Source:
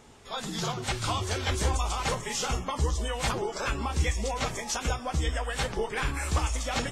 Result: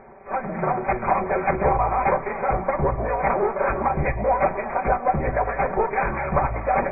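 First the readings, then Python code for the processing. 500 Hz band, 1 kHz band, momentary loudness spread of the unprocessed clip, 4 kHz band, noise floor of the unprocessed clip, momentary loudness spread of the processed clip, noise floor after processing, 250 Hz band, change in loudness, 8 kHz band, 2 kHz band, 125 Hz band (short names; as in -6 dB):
+11.5 dB, +12.0 dB, 3 LU, under -40 dB, -41 dBFS, 4 LU, -33 dBFS, +6.5 dB, +7.0 dB, under -40 dB, +5.5 dB, +1.5 dB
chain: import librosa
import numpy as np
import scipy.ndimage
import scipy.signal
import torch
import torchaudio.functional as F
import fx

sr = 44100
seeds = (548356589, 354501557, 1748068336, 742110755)

y = fx.lower_of_two(x, sr, delay_ms=5.2)
y = fx.brickwall_lowpass(y, sr, high_hz=2500.0)
y = fx.peak_eq(y, sr, hz=670.0, db=12.5, octaves=1.3)
y = y + 10.0 ** (-17.5 / 20.0) * np.pad(y, (int(201 * sr / 1000.0), 0))[:len(y)]
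y = y * 10.0 ** (4.5 / 20.0)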